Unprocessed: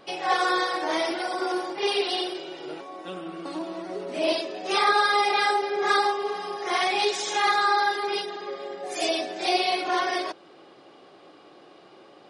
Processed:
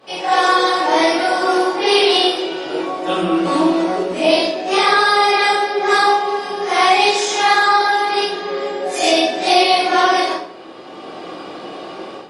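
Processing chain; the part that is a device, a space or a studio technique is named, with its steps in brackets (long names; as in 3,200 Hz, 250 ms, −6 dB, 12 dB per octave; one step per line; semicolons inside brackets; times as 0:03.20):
far-field microphone of a smart speaker (convolution reverb RT60 0.55 s, pre-delay 15 ms, DRR −9 dB; high-pass filter 87 Hz 24 dB per octave; automatic gain control; level −1 dB; Opus 48 kbit/s 48,000 Hz)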